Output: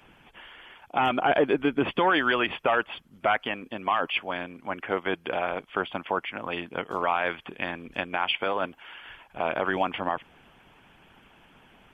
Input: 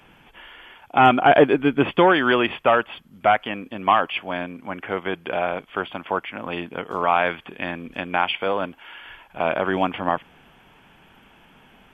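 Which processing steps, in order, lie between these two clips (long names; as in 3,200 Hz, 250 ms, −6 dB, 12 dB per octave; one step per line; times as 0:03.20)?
harmonic and percussive parts rebalanced harmonic −9 dB
brickwall limiter −13 dBFS, peak gain reduction 8.5 dB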